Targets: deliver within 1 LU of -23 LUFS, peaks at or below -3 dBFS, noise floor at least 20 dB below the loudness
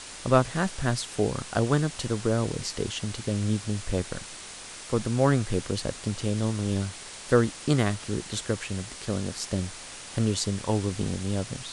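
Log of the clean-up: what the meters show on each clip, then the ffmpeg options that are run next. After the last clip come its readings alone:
noise floor -42 dBFS; noise floor target -48 dBFS; loudness -28.0 LUFS; peak level -5.5 dBFS; loudness target -23.0 LUFS
-> -af "afftdn=nr=6:nf=-42"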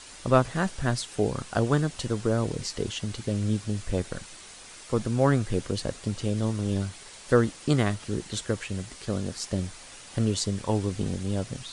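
noise floor -46 dBFS; noise floor target -49 dBFS
-> -af "afftdn=nr=6:nf=-46"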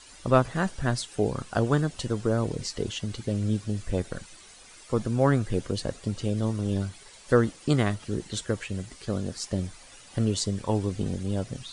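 noise floor -50 dBFS; loudness -28.5 LUFS; peak level -5.5 dBFS; loudness target -23.0 LUFS
-> -af "volume=1.88,alimiter=limit=0.708:level=0:latency=1"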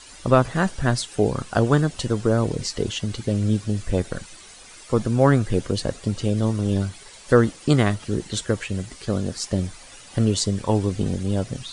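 loudness -23.0 LUFS; peak level -3.0 dBFS; noise floor -45 dBFS

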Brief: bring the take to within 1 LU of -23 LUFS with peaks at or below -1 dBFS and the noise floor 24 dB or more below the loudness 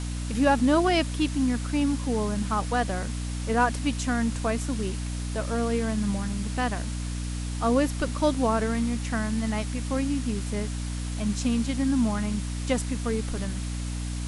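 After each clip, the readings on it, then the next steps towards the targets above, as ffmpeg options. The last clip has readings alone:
hum 60 Hz; highest harmonic 300 Hz; hum level -29 dBFS; noise floor -31 dBFS; noise floor target -51 dBFS; loudness -27.0 LUFS; peak level -9.5 dBFS; loudness target -23.0 LUFS
-> -af "bandreject=f=60:t=h:w=4,bandreject=f=120:t=h:w=4,bandreject=f=180:t=h:w=4,bandreject=f=240:t=h:w=4,bandreject=f=300:t=h:w=4"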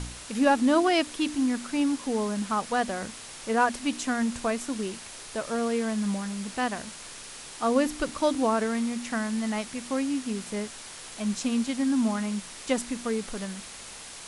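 hum not found; noise floor -43 dBFS; noise floor target -52 dBFS
-> -af "afftdn=nr=9:nf=-43"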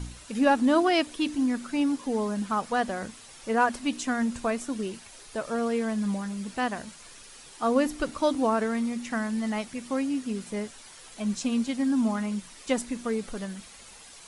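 noise floor -49 dBFS; noise floor target -52 dBFS
-> -af "afftdn=nr=6:nf=-49"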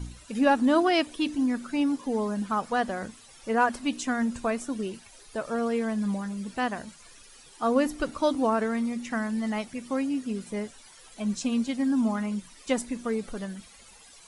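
noise floor -52 dBFS; loudness -28.0 LUFS; peak level -9.5 dBFS; loudness target -23.0 LUFS
-> -af "volume=1.78"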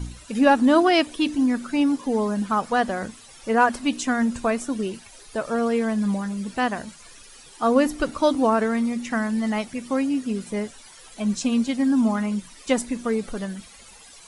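loudness -23.0 LUFS; peak level -4.5 dBFS; noise floor -47 dBFS

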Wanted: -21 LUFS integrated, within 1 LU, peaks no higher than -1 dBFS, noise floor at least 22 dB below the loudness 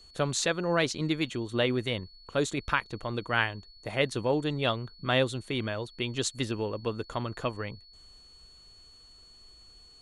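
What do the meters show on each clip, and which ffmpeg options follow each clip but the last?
steady tone 4.4 kHz; tone level -53 dBFS; loudness -30.5 LUFS; peak level -9.5 dBFS; loudness target -21.0 LUFS
-> -af "bandreject=f=4400:w=30"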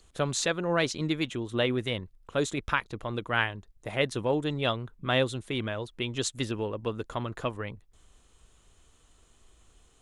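steady tone not found; loudness -30.5 LUFS; peak level -9.5 dBFS; loudness target -21.0 LUFS
-> -af "volume=2.99,alimiter=limit=0.891:level=0:latency=1"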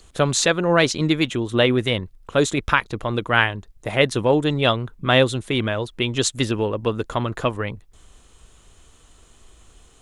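loudness -21.0 LUFS; peak level -1.0 dBFS; noise floor -53 dBFS

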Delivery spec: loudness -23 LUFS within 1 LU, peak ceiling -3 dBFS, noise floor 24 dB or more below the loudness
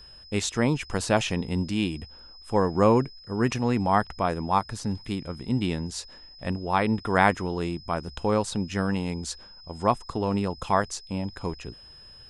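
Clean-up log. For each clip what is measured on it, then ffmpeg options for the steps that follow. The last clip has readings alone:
steady tone 5.1 kHz; tone level -47 dBFS; loudness -27.0 LUFS; peak level -5.0 dBFS; loudness target -23.0 LUFS
-> -af "bandreject=f=5100:w=30"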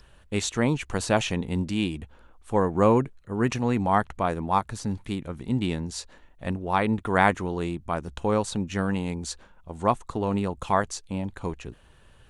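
steady tone not found; loudness -27.0 LUFS; peak level -5.0 dBFS; loudness target -23.0 LUFS
-> -af "volume=1.58,alimiter=limit=0.708:level=0:latency=1"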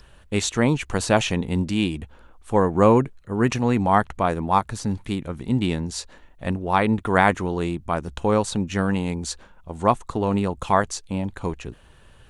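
loudness -23.0 LUFS; peak level -3.0 dBFS; noise floor -52 dBFS

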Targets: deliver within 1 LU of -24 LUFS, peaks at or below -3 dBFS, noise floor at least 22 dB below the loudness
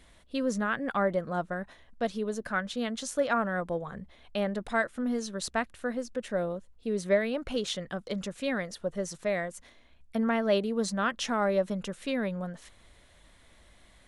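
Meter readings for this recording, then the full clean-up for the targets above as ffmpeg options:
loudness -31.5 LUFS; peak level -14.0 dBFS; loudness target -24.0 LUFS
-> -af "volume=2.37"

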